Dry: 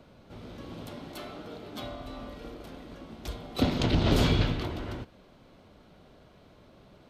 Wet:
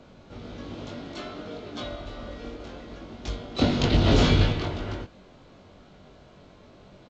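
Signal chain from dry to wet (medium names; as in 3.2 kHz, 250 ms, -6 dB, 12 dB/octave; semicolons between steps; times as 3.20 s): doubling 21 ms -3 dB; trim +2.5 dB; A-law 128 kbps 16 kHz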